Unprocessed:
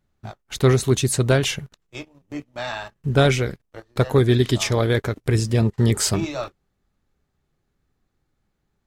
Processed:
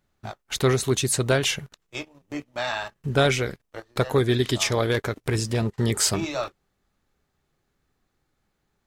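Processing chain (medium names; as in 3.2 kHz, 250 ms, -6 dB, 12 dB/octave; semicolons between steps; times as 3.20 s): in parallel at -1 dB: compression, threshold -28 dBFS, peak gain reduction 15.5 dB; 4.91–5.74 s: on the sum: overload inside the chain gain 11 dB; bass shelf 320 Hz -7 dB; trim -2 dB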